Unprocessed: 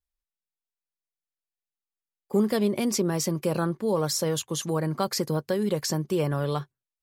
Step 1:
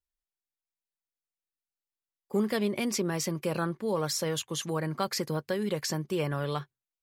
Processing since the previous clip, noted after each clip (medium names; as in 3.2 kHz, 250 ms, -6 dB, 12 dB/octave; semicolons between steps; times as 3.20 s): dynamic bell 2.2 kHz, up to +7 dB, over -46 dBFS, Q 0.83; trim -5 dB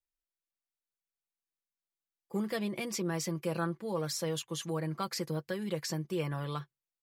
comb 6 ms, depth 53%; trim -6 dB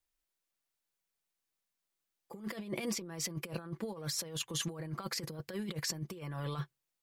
compressor with a negative ratio -39 dBFS, ratio -0.5; trim +1 dB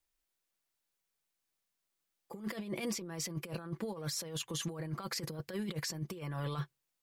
peak limiter -29.5 dBFS, peak gain reduction 7 dB; trim +1.5 dB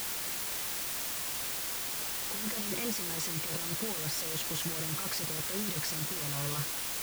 word length cut 6-bit, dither triangular